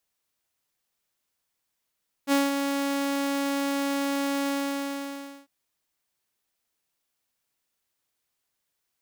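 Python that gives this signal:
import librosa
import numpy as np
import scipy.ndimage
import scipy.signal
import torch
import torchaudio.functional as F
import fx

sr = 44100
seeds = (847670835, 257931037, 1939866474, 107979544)

y = fx.adsr_tone(sr, wave='saw', hz=279.0, attack_ms=51.0, decay_ms=184.0, sustain_db=-6.5, held_s=2.21, release_ms=990.0, level_db=-16.0)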